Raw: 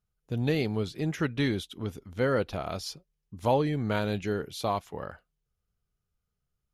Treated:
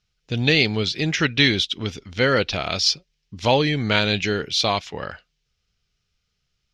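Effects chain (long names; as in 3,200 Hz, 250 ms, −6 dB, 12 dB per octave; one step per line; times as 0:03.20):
drawn EQ curve 1,100 Hz 0 dB, 2,400 Hz +13 dB, 5,500 Hz +14 dB, 11,000 Hz −13 dB
level +6 dB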